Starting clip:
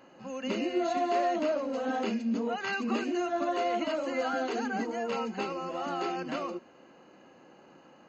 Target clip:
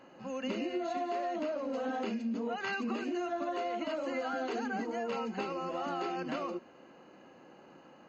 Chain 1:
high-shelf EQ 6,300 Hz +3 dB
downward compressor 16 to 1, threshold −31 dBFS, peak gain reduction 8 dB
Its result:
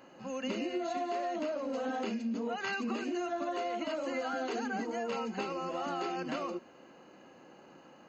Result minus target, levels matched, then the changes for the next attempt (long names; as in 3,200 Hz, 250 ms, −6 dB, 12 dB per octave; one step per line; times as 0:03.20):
8,000 Hz band +4.5 dB
change: high-shelf EQ 6,300 Hz −6 dB